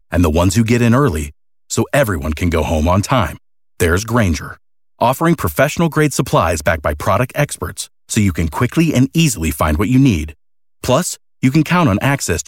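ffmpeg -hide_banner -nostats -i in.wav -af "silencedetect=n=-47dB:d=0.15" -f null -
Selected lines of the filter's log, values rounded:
silence_start: 1.32
silence_end: 1.70 | silence_duration: 0.38
silence_start: 3.38
silence_end: 3.78 | silence_duration: 0.41
silence_start: 4.58
silence_end: 4.99 | silence_duration: 0.41
silence_start: 7.88
silence_end: 8.09 | silence_duration: 0.21
silence_start: 10.34
silence_end: 10.82 | silence_duration: 0.48
silence_start: 11.17
silence_end: 11.42 | silence_duration: 0.25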